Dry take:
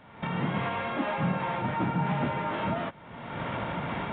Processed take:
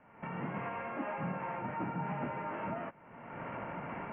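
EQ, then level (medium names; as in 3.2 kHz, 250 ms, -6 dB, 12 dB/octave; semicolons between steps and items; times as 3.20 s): steep low-pass 2.9 kHz 96 dB/octave; distance through air 320 m; peaking EQ 72 Hz -8.5 dB 2.4 oct; -6.0 dB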